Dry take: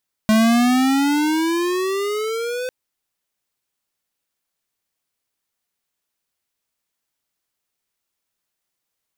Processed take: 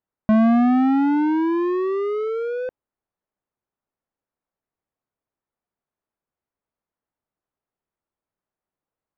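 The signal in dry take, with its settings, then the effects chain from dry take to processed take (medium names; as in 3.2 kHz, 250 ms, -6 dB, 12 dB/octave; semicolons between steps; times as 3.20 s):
gliding synth tone square, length 2.40 s, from 215 Hz, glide +15 st, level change -12 dB, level -13.5 dB
low-pass 1.1 kHz 12 dB/octave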